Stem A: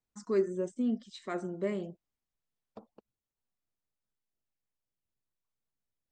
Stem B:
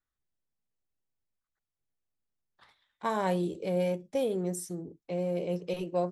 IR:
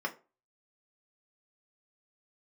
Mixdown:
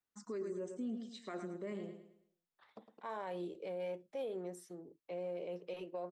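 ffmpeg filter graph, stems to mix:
-filter_complex "[0:a]highpass=150,volume=-5dB,asplit=2[link_01][link_02];[link_02]volume=-10.5dB[link_03];[1:a]acrossover=split=330 3800:gain=0.2 1 0.224[link_04][link_05][link_06];[link_04][link_05][link_06]amix=inputs=3:normalize=0,volume=-6dB[link_07];[link_03]aecho=0:1:108|216|324|432|540:1|0.37|0.137|0.0507|0.0187[link_08];[link_01][link_07][link_08]amix=inputs=3:normalize=0,alimiter=level_in=10dB:limit=-24dB:level=0:latency=1:release=50,volume=-10dB"

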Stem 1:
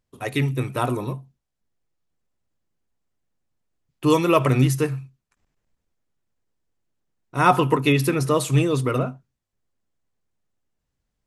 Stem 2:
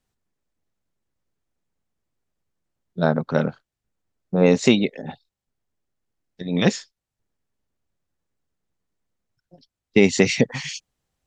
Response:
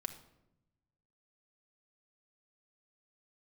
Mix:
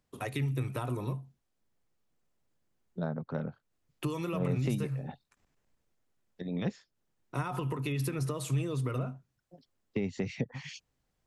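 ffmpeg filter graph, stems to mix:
-filter_complex "[0:a]alimiter=limit=-11dB:level=0:latency=1,acompressor=threshold=-20dB:ratio=6,volume=0.5dB[link_01];[1:a]lowpass=frequency=1800:poles=1,volume=-3.5dB[link_02];[link_01][link_02]amix=inputs=2:normalize=0,lowshelf=frequency=110:gain=-4.5,acrossover=split=130[link_03][link_04];[link_04]acompressor=threshold=-38dB:ratio=3[link_05];[link_03][link_05]amix=inputs=2:normalize=0"

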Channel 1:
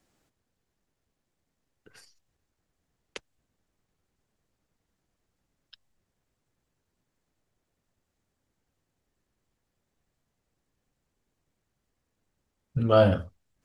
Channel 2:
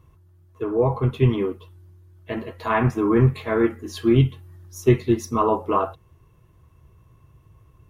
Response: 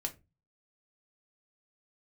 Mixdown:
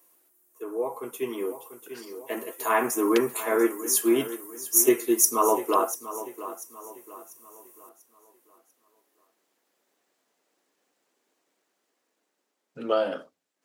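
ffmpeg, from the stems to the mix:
-filter_complex "[0:a]acompressor=threshold=-21dB:ratio=6,volume=0dB,asplit=2[link_01][link_02];[link_02]volume=-15.5dB[link_03];[1:a]aexciter=amount=13.9:drive=6.8:freq=6300,volume=-9dB,asplit=2[link_04][link_05];[link_05]volume=-14dB[link_06];[2:a]atrim=start_sample=2205[link_07];[link_03][link_07]afir=irnorm=-1:irlink=0[link_08];[link_06]aecho=0:1:692|1384|2076|2768|3460:1|0.38|0.144|0.0549|0.0209[link_09];[link_01][link_04][link_08][link_09]amix=inputs=4:normalize=0,highpass=frequency=300:width=0.5412,highpass=frequency=300:width=1.3066,dynaudnorm=framelen=160:gausssize=21:maxgain=8dB"

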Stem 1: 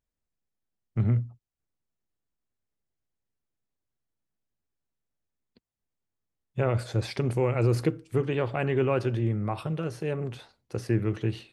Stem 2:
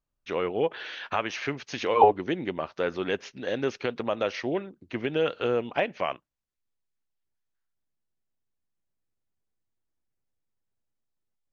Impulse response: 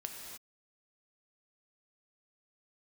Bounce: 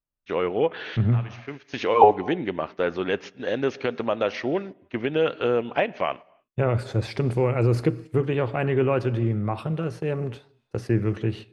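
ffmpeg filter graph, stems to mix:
-filter_complex "[0:a]agate=range=-33dB:threshold=-48dB:ratio=3:detection=peak,volume=2dB,asplit=3[link_01][link_02][link_03];[link_02]volume=-12dB[link_04];[1:a]volume=2.5dB,asplit=2[link_05][link_06];[link_06]volume=-14dB[link_07];[link_03]apad=whole_len=508460[link_08];[link_05][link_08]sidechaincompress=threshold=-48dB:ratio=6:attack=5.6:release=285[link_09];[2:a]atrim=start_sample=2205[link_10];[link_04][link_07]amix=inputs=2:normalize=0[link_11];[link_11][link_10]afir=irnorm=-1:irlink=0[link_12];[link_01][link_09][link_12]amix=inputs=3:normalize=0,agate=range=-10dB:threshold=-36dB:ratio=16:detection=peak,highshelf=frequency=5400:gain=-9"

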